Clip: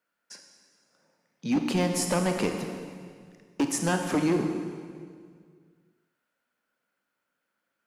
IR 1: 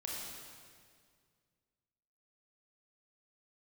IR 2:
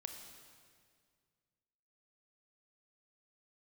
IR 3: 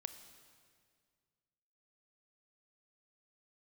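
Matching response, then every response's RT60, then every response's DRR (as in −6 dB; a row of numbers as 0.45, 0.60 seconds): 2; 2.0, 2.0, 2.0 seconds; −4.0, 4.5, 9.5 decibels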